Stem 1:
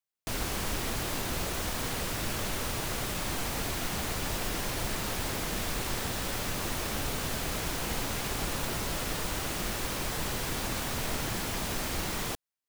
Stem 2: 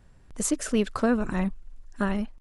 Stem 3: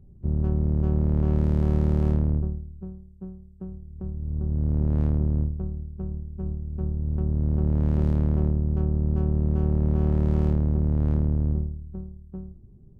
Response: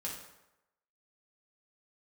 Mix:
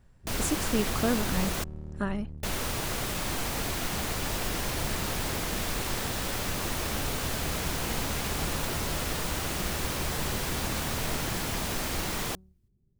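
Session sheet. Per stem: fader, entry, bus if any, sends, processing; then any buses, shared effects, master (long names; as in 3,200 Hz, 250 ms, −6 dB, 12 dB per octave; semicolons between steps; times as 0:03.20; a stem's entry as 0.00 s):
+1.5 dB, 0.00 s, muted 0:01.64–0:02.43, no send, no processing
−4.5 dB, 0.00 s, no send, no processing
−19.0 dB, 0.00 s, no send, no processing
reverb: not used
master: no processing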